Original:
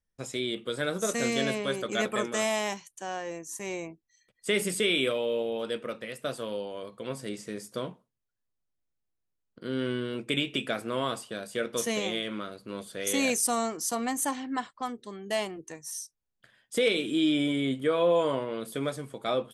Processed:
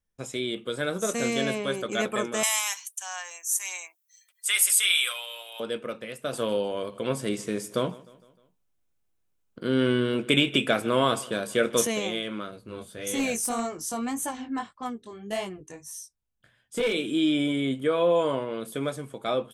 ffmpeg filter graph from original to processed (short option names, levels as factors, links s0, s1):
-filter_complex "[0:a]asettb=1/sr,asplit=3[s0][s1][s2];[s0]atrim=end=2.434[s3];[s1]atrim=start=2.43:end=5.6,asetpts=PTS-STARTPTS,afade=t=in:d=0.004:c=qsin,afade=t=out:st=3.166:d=0.004:c=qsin,highpass=f=930:w=0.5412,highpass=f=930:w=1.3066,aemphasis=mode=production:type=75fm,aecho=1:1:5.6:0.4,atrim=end_sample=139797[s4];[s2]atrim=start=5.596[s5];[s3][s4]acrossfade=d=0.004:c1=hsin:c2=qsin[s6];[s6][s5]acrossfade=d=0.004:c1=qsin:c2=hsin,asettb=1/sr,asplit=3[s7][s8][s9];[s7]atrim=end=6.334[s10];[s8]atrim=start=6.33:end=11.87,asetpts=PTS-STARTPTS,afade=t=in:d=0.004:c=qsin,afade=t=out:st=5.536:d=0.004:c=qsin,acontrast=53,aecho=1:1:153|306|459|612:0.0841|0.0446|0.0236|0.0125,atrim=end_sample=244314[s11];[s9]atrim=start=11.866[s12];[s10][s11]acrossfade=d=0.004:c1=hsin:c2=qsin[s13];[s13][s12]acrossfade=d=0.004:c1=qsin:c2=hsin,asettb=1/sr,asplit=3[s14][s15][s16];[s14]atrim=end=12.514[s17];[s15]atrim=start=12.51:end=16.93,asetpts=PTS-STARTPTS,afade=t=in:d=0.004:c=qsin,afade=t=out:st=4.416:d=0.004:c=qsin,equalizer=f=64:w=0.67:g=12.5,flanger=delay=16:depth=6.8:speed=1.7,aeval=exprs='clip(val(0),-1,0.0668)':c=same[s18];[s16]atrim=start=16.926[s19];[s17][s18]acrossfade=d=0.004:c1=hsin:c2=qsin[s20];[s20][s19]acrossfade=d=0.004:c1=qsin:c2=hsin,equalizer=f=4600:w=3.2:g=-4.5,bandreject=f=1900:w=18,volume=1.19"